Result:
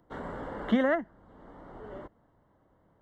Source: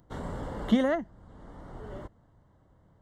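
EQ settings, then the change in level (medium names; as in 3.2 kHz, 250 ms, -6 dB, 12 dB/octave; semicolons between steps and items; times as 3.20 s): bass shelf 140 Hz +7 dB; dynamic bell 1.6 kHz, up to +6 dB, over -51 dBFS, Q 1.9; three-band isolator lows -15 dB, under 220 Hz, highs -13 dB, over 3.3 kHz; 0.0 dB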